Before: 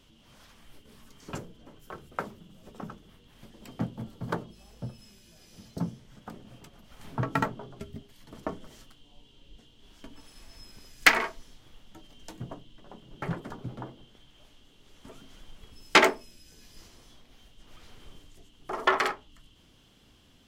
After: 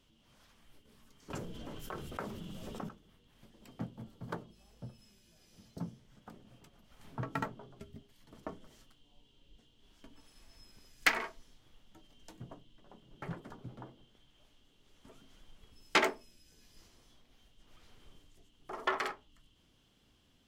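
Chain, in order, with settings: 1.3–2.89 fast leveller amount 70%; gain -9 dB

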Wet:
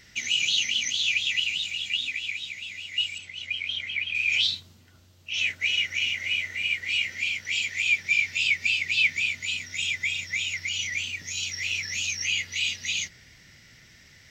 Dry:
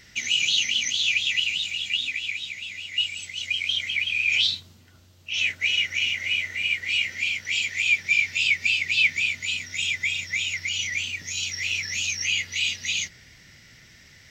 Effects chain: 3.18–4.15 tone controls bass -1 dB, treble -12 dB; gain -2 dB

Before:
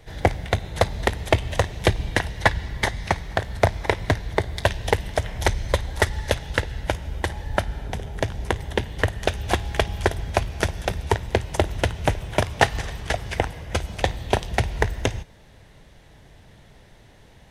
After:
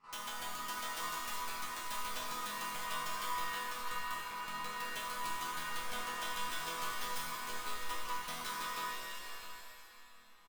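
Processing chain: speed glide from 196% -> 138%; Bessel low-pass 9800 Hz, order 8; high shelf 4700 Hz -11 dB; ring modulator 1100 Hz; wrapped overs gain 17.5 dB; resonator bank E3 major, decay 0.64 s; echo 0.653 s -12 dB; shimmer reverb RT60 1.8 s, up +7 st, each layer -2 dB, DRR 2 dB; gain +4.5 dB

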